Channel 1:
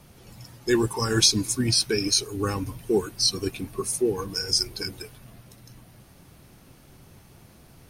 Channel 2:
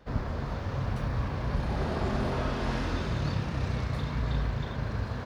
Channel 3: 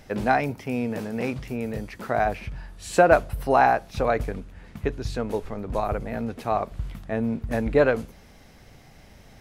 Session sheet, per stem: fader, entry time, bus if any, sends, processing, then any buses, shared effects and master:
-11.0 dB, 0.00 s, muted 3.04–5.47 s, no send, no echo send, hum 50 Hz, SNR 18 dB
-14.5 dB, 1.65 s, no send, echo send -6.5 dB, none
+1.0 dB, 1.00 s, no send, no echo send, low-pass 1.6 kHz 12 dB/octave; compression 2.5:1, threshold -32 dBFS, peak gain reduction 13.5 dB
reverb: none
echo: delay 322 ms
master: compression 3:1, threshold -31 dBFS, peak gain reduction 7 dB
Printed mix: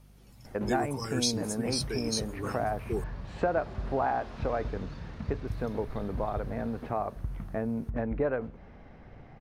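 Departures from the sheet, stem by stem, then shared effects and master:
stem 3: entry 1.00 s -> 0.45 s; master: missing compression 3:1, threshold -31 dBFS, peak gain reduction 7 dB

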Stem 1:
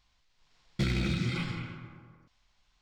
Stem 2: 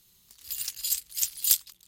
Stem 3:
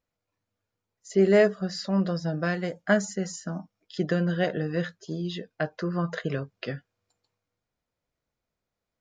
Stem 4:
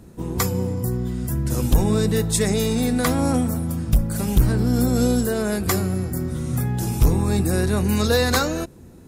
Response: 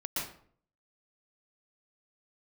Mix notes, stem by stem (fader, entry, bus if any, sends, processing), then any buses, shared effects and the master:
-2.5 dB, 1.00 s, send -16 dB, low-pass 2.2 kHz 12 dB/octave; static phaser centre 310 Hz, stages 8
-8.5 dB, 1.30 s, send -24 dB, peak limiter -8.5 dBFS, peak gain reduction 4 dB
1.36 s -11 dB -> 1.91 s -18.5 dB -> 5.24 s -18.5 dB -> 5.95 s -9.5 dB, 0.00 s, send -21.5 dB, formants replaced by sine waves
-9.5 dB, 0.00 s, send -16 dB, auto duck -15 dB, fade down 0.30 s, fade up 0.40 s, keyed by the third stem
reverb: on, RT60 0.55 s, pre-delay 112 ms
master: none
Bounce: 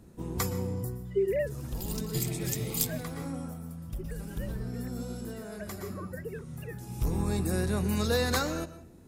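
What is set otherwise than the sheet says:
stem 1: entry 1.00 s -> 1.35 s; stem 2: missing peak limiter -8.5 dBFS, peak gain reduction 4 dB; stem 3: send off

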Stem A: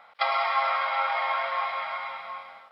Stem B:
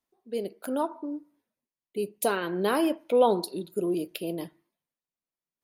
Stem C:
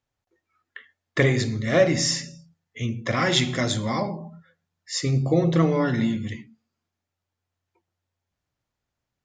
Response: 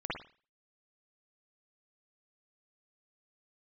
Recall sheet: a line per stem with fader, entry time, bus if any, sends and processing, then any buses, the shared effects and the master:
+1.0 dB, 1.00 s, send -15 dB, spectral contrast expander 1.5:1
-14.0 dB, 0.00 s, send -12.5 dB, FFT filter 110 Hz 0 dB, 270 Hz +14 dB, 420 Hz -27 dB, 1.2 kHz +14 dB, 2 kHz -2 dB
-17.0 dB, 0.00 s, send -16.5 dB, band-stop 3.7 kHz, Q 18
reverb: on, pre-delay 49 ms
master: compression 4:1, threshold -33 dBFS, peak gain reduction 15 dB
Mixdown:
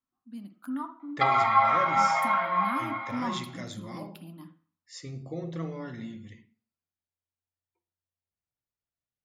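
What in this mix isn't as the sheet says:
stem C: missing band-stop 3.7 kHz, Q 18; master: missing compression 4:1, threshold -33 dBFS, peak gain reduction 15 dB

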